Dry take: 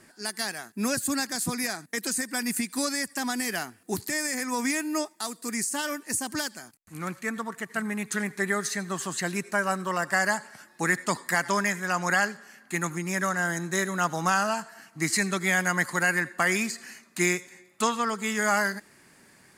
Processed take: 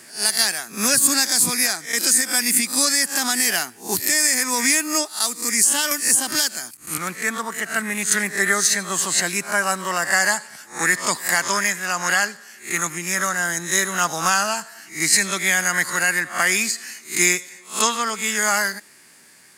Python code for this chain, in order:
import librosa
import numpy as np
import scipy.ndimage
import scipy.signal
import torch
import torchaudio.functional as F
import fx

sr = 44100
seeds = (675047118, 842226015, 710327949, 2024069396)

y = fx.spec_swells(x, sr, rise_s=0.32)
y = fx.low_shelf(y, sr, hz=100.0, db=-11.5)
y = fx.rider(y, sr, range_db=3, speed_s=2.0)
y = fx.high_shelf(y, sr, hz=2100.0, db=10.5)
y = fx.band_squash(y, sr, depth_pct=70, at=(5.91, 6.98))
y = y * librosa.db_to_amplitude(1.5)